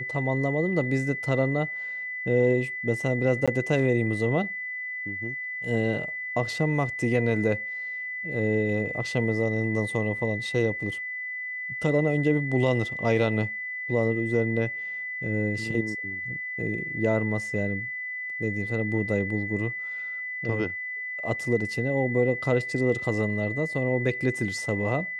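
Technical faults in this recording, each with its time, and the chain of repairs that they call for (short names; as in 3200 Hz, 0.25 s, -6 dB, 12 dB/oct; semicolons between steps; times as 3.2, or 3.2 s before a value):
tone 2000 Hz -31 dBFS
3.46–3.48 gap 16 ms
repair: notch 2000 Hz, Q 30; interpolate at 3.46, 16 ms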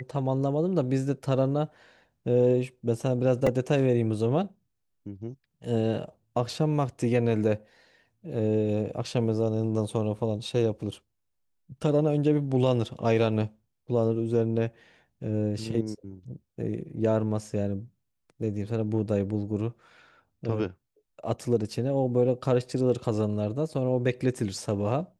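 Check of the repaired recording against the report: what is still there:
none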